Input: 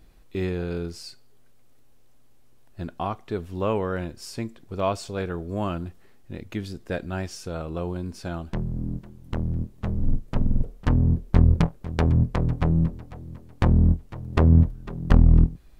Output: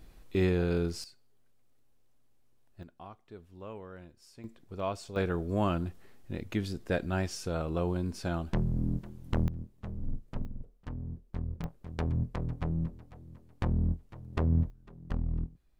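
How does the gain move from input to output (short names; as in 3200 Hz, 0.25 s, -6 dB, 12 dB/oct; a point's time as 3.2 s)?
+0.5 dB
from 1.04 s -12 dB
from 2.83 s -19 dB
from 4.44 s -9 dB
from 5.16 s -1 dB
from 9.48 s -12.5 dB
from 10.45 s -19.5 dB
from 11.64 s -11 dB
from 14.7 s -17.5 dB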